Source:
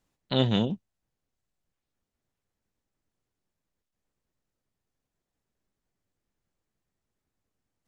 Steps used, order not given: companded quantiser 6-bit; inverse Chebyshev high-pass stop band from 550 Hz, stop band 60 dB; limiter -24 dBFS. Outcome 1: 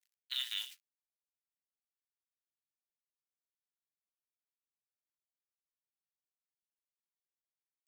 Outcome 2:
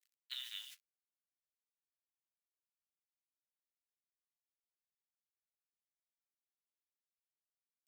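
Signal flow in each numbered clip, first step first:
companded quantiser > inverse Chebyshev high-pass > limiter; limiter > companded quantiser > inverse Chebyshev high-pass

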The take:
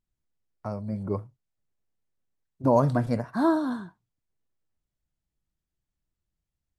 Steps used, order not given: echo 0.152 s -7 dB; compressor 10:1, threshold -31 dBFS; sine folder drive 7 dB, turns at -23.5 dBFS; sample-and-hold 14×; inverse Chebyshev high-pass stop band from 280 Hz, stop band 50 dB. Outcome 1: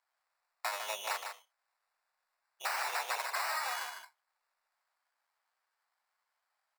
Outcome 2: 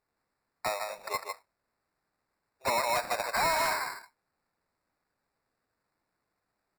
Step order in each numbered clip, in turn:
sample-and-hold > sine folder > inverse Chebyshev high-pass > compressor > echo; inverse Chebyshev high-pass > sample-and-hold > echo > compressor > sine folder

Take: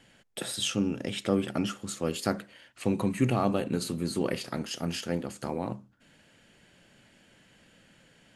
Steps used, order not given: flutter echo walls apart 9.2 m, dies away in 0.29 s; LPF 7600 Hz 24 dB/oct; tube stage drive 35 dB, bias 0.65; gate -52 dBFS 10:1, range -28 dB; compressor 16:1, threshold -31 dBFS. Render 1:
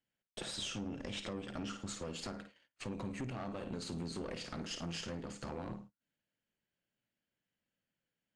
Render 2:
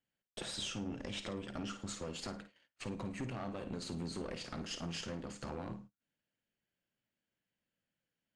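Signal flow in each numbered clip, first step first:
flutter echo > compressor > tube stage > gate > LPF; compressor > tube stage > flutter echo > gate > LPF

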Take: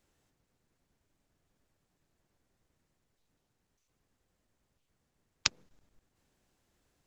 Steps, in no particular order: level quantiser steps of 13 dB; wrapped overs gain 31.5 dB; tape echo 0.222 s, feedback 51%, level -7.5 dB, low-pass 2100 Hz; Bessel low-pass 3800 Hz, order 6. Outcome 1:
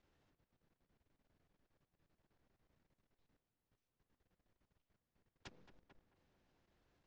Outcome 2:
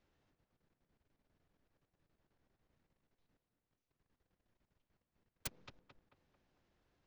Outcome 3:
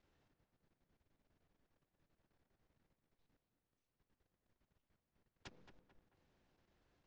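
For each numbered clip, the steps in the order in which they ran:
wrapped overs > tape echo > Bessel low-pass > level quantiser; level quantiser > tape echo > Bessel low-pass > wrapped overs; wrapped overs > Bessel low-pass > level quantiser > tape echo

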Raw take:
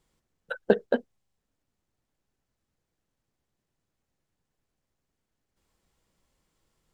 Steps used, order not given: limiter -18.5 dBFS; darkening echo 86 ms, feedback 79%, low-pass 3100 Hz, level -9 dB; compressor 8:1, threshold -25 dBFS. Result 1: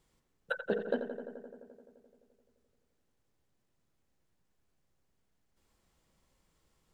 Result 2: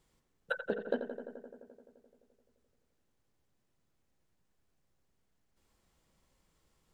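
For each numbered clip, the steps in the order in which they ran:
limiter > compressor > darkening echo; compressor > limiter > darkening echo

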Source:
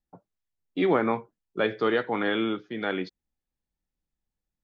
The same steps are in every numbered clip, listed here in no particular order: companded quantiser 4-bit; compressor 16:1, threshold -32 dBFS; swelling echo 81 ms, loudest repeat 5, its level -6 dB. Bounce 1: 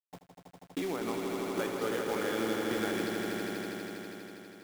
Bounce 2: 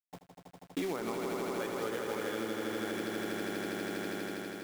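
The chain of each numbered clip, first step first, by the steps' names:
companded quantiser > compressor > swelling echo; companded quantiser > swelling echo > compressor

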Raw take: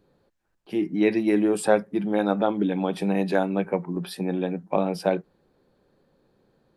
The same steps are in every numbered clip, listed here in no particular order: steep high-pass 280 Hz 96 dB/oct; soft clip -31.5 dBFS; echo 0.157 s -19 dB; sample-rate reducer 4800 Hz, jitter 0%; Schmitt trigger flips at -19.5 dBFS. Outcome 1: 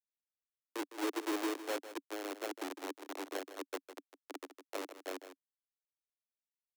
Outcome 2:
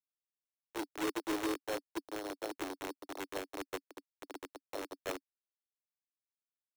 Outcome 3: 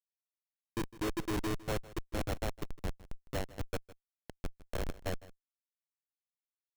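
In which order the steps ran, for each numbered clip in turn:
sample-rate reducer > Schmitt trigger > echo > soft clip > steep high-pass; echo > Schmitt trigger > soft clip > steep high-pass > sample-rate reducer; steep high-pass > sample-rate reducer > Schmitt trigger > soft clip > echo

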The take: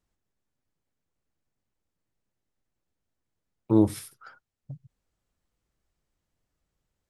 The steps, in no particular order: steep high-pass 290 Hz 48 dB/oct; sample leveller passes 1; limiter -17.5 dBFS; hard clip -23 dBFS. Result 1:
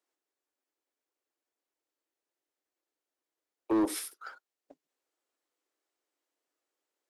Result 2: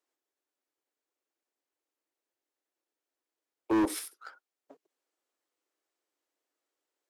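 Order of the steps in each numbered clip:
steep high-pass > limiter > hard clip > sample leveller; sample leveller > steep high-pass > hard clip > limiter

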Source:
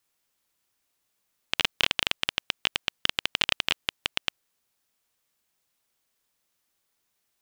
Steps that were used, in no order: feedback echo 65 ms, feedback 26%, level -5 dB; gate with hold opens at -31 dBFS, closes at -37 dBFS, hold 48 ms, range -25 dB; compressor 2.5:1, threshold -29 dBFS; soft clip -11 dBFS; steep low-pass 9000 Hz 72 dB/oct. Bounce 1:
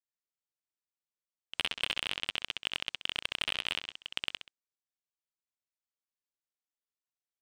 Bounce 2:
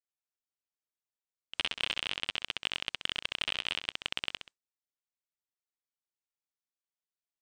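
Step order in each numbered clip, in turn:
steep low-pass > gate with hold > feedback echo > soft clip > compressor; feedback echo > gate with hold > soft clip > steep low-pass > compressor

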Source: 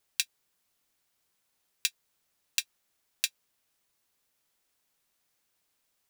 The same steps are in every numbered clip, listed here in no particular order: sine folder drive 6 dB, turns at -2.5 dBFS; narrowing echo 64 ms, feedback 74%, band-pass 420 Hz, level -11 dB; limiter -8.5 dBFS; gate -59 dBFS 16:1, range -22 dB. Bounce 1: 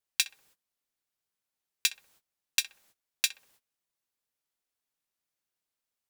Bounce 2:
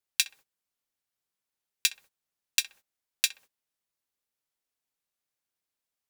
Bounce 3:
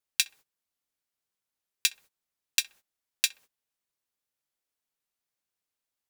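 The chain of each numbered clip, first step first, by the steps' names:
narrowing echo > sine folder > gate > limiter; narrowing echo > limiter > gate > sine folder; limiter > narrowing echo > gate > sine folder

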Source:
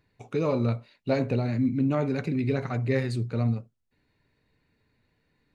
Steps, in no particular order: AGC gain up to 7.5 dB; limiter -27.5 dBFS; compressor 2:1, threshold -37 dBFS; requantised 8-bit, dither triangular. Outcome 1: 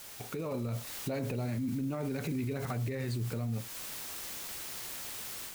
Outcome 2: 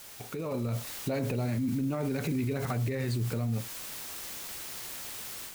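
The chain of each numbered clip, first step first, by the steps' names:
requantised > limiter > AGC > compressor; requantised > limiter > compressor > AGC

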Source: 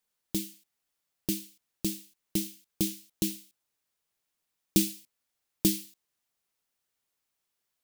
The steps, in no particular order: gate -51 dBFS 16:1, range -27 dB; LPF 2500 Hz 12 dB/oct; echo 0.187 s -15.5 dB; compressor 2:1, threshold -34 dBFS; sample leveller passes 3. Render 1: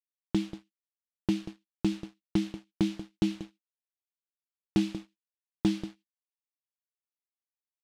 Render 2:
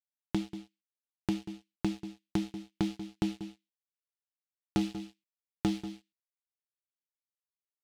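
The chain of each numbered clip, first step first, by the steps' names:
compressor > echo > sample leveller > gate > LPF; LPF > sample leveller > gate > echo > compressor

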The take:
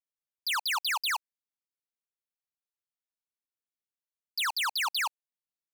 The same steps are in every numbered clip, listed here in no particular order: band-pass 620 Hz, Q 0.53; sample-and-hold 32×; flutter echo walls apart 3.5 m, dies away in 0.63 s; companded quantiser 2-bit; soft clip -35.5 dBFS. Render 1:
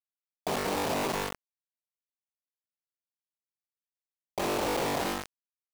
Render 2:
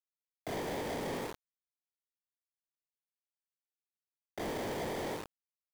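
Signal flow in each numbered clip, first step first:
sample-and-hold > flutter echo > soft clip > band-pass > companded quantiser; flutter echo > sample-and-hold > band-pass > companded quantiser > soft clip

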